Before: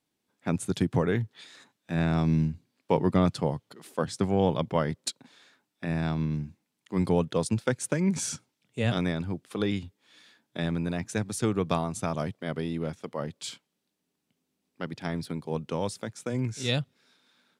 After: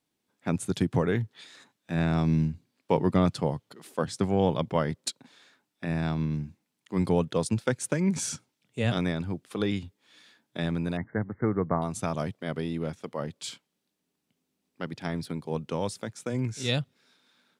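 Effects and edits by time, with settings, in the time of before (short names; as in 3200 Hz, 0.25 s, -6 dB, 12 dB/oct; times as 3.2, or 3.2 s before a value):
10.97–11.82 brick-wall FIR low-pass 2200 Hz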